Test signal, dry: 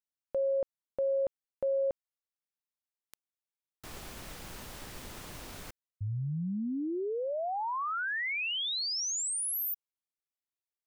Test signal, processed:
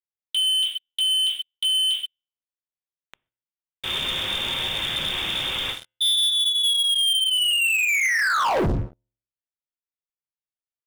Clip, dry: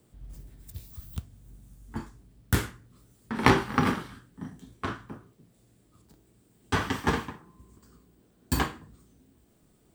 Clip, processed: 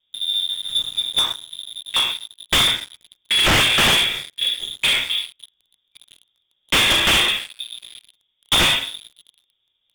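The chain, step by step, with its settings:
loose part that buzzes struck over −27 dBFS, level −19 dBFS
high-frequency loss of the air 150 metres
tuned comb filter 81 Hz, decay 0.58 s, harmonics all, mix 50%
reverb whose tail is shaped and stops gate 170 ms falling, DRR −2 dB
wrap-around overflow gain 21 dB
voice inversion scrambler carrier 3,600 Hz
low-shelf EQ 350 Hz +8 dB
leveller curve on the samples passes 5
level +3 dB

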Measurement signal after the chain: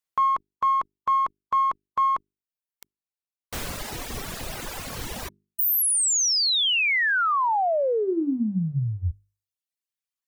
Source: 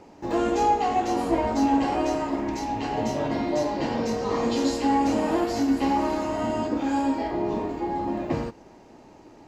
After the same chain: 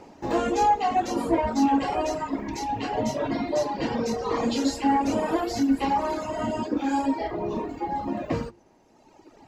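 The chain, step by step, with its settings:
in parallel at −8.5 dB: asymmetric clip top −24 dBFS
on the sum: mains-hum notches 50/100/150/200/250/300/350/400 Hz
reverb reduction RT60 1.8 s

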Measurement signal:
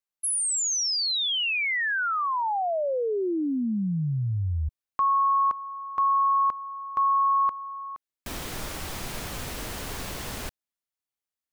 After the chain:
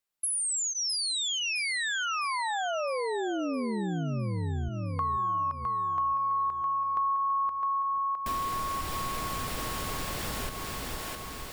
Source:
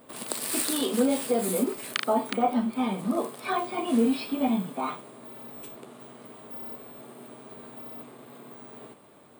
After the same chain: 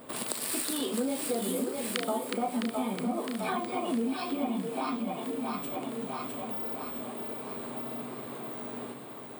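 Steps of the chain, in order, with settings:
echo with a time of its own for lows and highs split 360 Hz, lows 483 ms, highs 660 ms, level −6 dB
downward compressor 3 to 1, threshold −37 dBFS
notch filter 6,200 Hz, Q 18
level +5 dB

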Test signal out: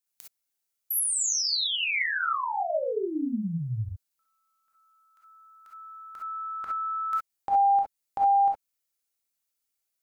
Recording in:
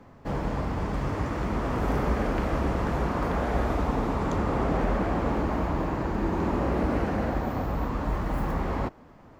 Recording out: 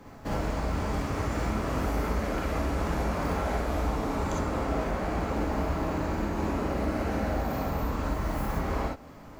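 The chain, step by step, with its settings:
high-shelf EQ 4,100 Hz +10.5 dB
downward compressor, threshold −30 dBFS
reverb whose tail is shaped and stops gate 80 ms rising, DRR −2.5 dB

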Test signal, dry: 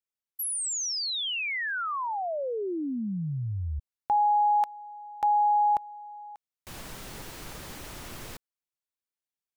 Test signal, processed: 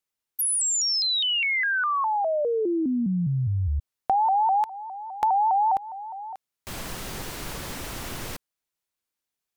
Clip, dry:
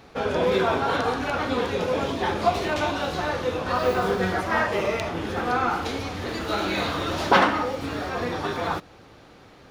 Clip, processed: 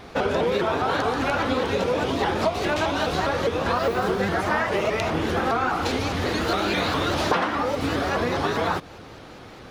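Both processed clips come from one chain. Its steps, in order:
downward compressor 6 to 1, threshold −27 dBFS
pitch modulation by a square or saw wave saw up 4.9 Hz, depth 160 cents
level +7 dB

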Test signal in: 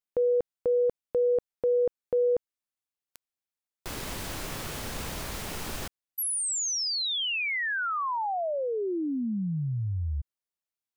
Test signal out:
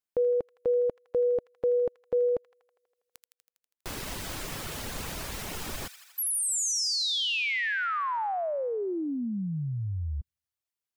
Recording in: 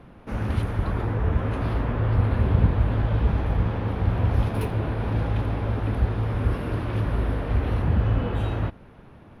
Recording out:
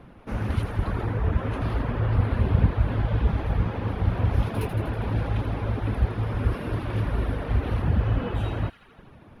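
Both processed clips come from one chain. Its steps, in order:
delay with a high-pass on its return 81 ms, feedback 67%, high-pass 1,400 Hz, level −6.5 dB
reverb reduction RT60 0.54 s

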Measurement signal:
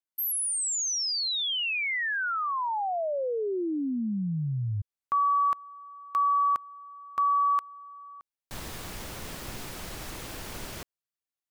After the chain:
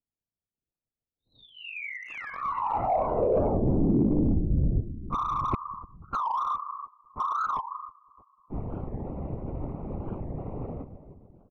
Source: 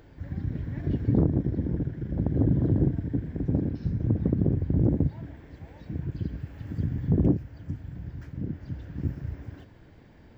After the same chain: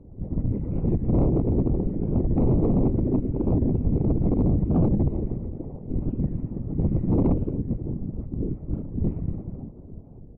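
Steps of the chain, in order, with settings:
on a send: repeating echo 302 ms, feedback 49%, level −12.5 dB
on the sum: one-pitch LPC vocoder at 8 kHz 250 Hz
pitch vibrato 0.8 Hz 18 cents
low-pass that shuts in the quiet parts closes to 530 Hz, open at −20 dBFS
random phases in short frames
hard clipping −24 dBFS
moving average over 27 samples
wow of a warped record 45 rpm, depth 250 cents
level +7.5 dB

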